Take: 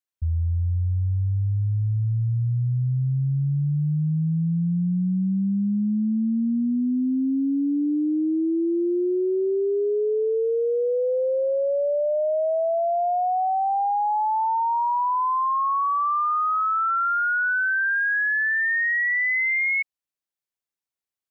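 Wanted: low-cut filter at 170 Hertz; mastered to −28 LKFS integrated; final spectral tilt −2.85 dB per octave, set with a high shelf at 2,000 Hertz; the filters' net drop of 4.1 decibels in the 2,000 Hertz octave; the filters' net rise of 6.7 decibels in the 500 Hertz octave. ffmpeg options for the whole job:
ffmpeg -i in.wav -af "highpass=170,equalizer=frequency=500:width_type=o:gain=8.5,highshelf=frequency=2000:gain=4,equalizer=frequency=2000:width_type=o:gain=-8,volume=-7.5dB" out.wav

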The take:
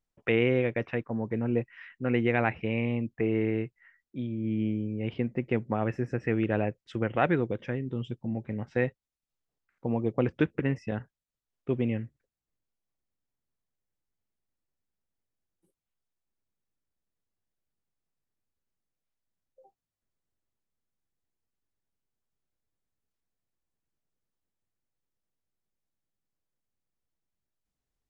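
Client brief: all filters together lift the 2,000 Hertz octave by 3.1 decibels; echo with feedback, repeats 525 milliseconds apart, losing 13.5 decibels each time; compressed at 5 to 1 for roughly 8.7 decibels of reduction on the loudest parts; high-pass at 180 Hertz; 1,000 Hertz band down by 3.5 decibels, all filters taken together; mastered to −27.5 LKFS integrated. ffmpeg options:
ffmpeg -i in.wav -af "highpass=180,equalizer=frequency=1000:width_type=o:gain=-7,equalizer=frequency=2000:width_type=o:gain=5.5,acompressor=threshold=-30dB:ratio=5,aecho=1:1:525|1050:0.211|0.0444,volume=9dB" out.wav

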